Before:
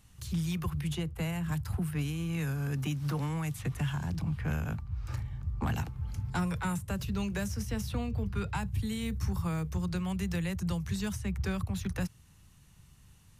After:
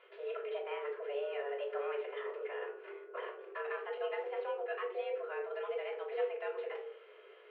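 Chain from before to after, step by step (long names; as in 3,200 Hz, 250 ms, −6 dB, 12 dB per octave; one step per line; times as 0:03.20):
stylus tracing distortion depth 0.087 ms
reversed playback
downward compressor 10 to 1, threshold −43 dBFS, peak gain reduction 16.5 dB
reversed playback
rectangular room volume 2,000 cubic metres, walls furnished, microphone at 3.3 metres
single-sideband voice off tune +280 Hz 190–2,600 Hz
phase-vocoder stretch with locked phases 0.56×
level +8.5 dB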